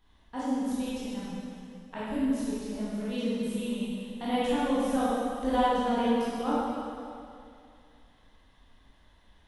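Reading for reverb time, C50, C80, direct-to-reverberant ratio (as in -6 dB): 2.4 s, -5.0 dB, -2.0 dB, -10.5 dB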